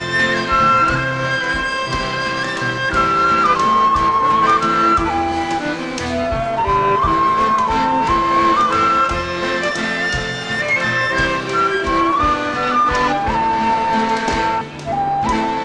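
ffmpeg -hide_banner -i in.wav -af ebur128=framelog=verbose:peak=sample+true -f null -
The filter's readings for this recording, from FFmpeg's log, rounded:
Integrated loudness:
  I:         -16.1 LUFS
  Threshold: -26.1 LUFS
Loudness range:
  LRA:         2.3 LU
  Threshold: -36.0 LUFS
  LRA low:   -16.9 LUFS
  LRA high:  -14.6 LUFS
Sample peak:
  Peak:       -2.6 dBFS
True peak:
  Peak:       -2.6 dBFS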